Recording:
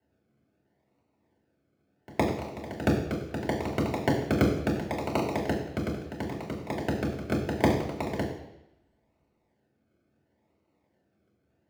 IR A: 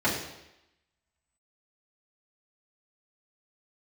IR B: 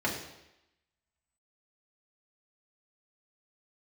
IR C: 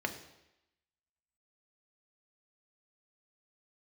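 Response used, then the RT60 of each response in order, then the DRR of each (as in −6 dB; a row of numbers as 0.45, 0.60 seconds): B; 0.90, 0.90, 0.90 seconds; −8.5, −4.0, 4.5 decibels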